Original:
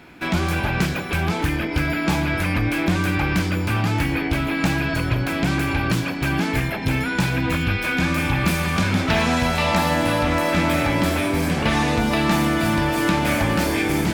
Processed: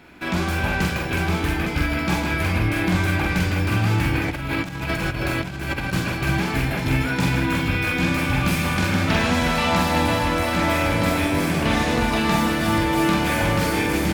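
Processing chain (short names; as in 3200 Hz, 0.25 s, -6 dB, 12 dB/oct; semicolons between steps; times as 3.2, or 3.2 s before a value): tapped delay 43/45/156/366/861 ms -12/-3.5/-7/-7/-9.5 dB; 4.28–5.93 negative-ratio compressor -22 dBFS, ratio -0.5; gain -3 dB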